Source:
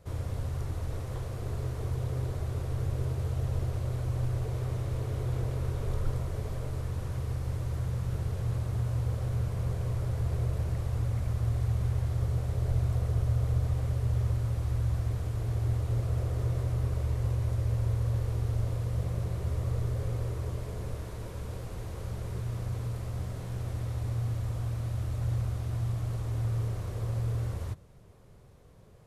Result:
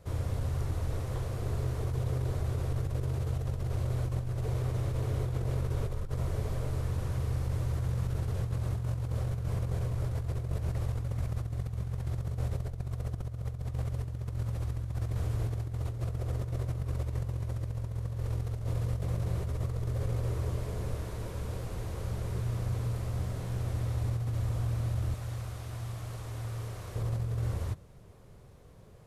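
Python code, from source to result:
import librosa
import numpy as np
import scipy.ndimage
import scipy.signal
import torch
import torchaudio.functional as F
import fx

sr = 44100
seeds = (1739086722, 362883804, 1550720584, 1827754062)

y = fx.low_shelf(x, sr, hz=490.0, db=-9.5, at=(25.14, 26.96))
y = fx.over_compress(y, sr, threshold_db=-31.0, ratio=-0.5)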